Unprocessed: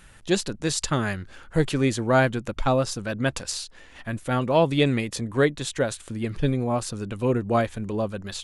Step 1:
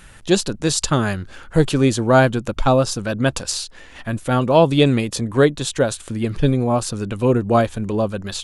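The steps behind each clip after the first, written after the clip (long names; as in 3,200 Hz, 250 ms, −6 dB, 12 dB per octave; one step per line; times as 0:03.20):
dynamic equaliser 2,000 Hz, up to −7 dB, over −47 dBFS, Q 2.8
level +6.5 dB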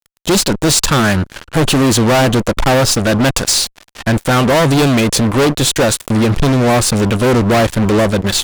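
fuzz pedal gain 28 dB, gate −34 dBFS
level +4 dB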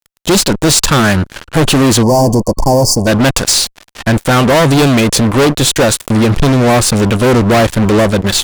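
gain on a spectral selection 0:02.03–0:03.07, 1,100–4,400 Hz −27 dB
level +2.5 dB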